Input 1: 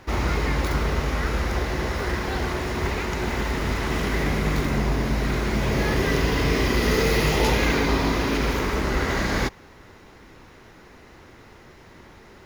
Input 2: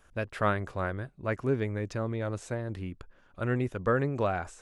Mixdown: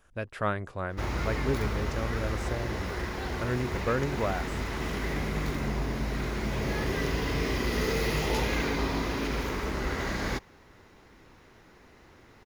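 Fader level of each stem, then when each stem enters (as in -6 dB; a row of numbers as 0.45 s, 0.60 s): -7.5 dB, -2.0 dB; 0.90 s, 0.00 s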